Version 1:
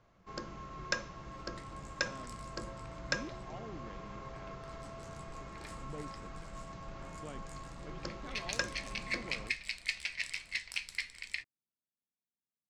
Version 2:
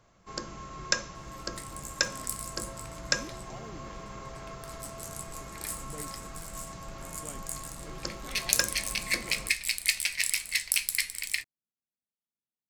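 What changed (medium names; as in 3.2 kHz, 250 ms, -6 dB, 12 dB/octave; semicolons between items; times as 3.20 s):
first sound +3.0 dB; second sound +5.0 dB; master: remove distance through air 140 m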